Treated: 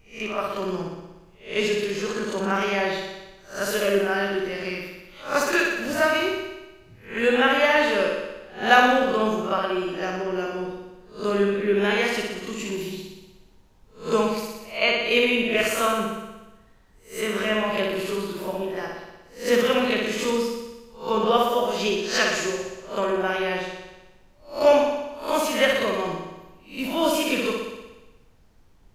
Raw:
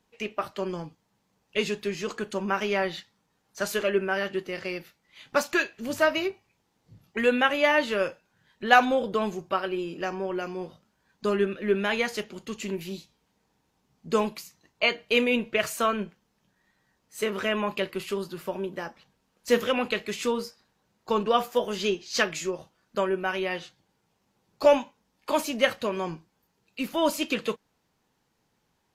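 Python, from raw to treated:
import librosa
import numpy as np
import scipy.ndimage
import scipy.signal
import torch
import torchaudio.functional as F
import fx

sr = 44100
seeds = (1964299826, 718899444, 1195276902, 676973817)

y = fx.spec_swells(x, sr, rise_s=0.35)
y = fx.room_flutter(y, sr, wall_m=10.3, rt60_s=1.1)
y = fx.dmg_noise_colour(y, sr, seeds[0], colour='brown', level_db=-55.0)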